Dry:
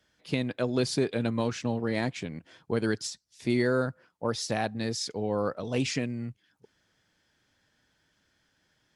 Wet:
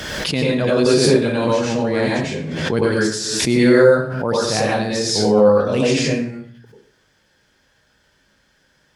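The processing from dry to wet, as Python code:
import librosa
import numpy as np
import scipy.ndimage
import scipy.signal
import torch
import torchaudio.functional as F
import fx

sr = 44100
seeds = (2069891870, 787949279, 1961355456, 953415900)

y = fx.rev_plate(x, sr, seeds[0], rt60_s=0.56, hf_ratio=0.75, predelay_ms=80, drr_db=-6.0)
y = fx.pre_swell(y, sr, db_per_s=31.0)
y = y * librosa.db_to_amplitude(4.5)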